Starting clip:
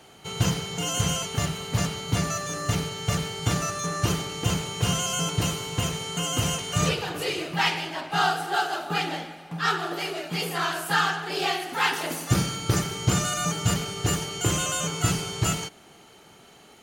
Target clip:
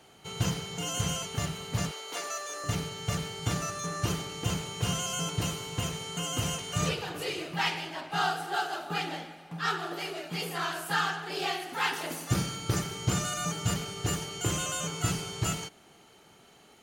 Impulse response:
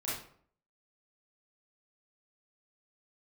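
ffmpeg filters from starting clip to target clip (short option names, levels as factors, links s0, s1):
-filter_complex "[0:a]asettb=1/sr,asplit=3[s0][s1][s2];[s0]atrim=end=1.914[s3];[s1]atrim=start=1.91:end=2.64,asetpts=PTS-STARTPTS,afade=t=in:d=0.004:c=qsin,afade=t=out:st=0.726:d=0.004:c=qsin,highpass=f=400:w=0.5412,highpass=f=400:w=1.3066[s4];[s2]atrim=start=2.636[s5];[s3][s4]acrossfade=d=0.004:c1=hsin:c2=qsin[s6];[s6][s5]acrossfade=d=0.004:c1=qsin:c2=hsin,volume=0.531"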